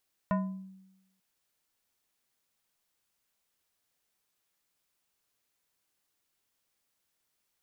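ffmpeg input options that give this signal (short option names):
-f lavfi -i "aevalsrc='0.0708*pow(10,-3*t/0.97)*sin(2*PI*190*t+1.1*pow(10,-3*t/0.62)*sin(2*PI*4.33*190*t))':d=0.89:s=44100"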